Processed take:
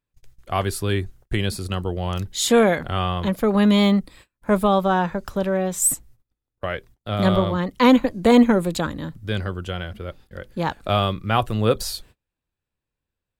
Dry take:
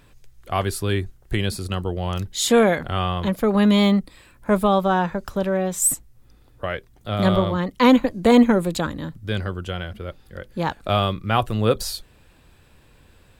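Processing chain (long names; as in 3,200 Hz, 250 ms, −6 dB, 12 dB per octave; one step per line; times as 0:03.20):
noise gate −45 dBFS, range −32 dB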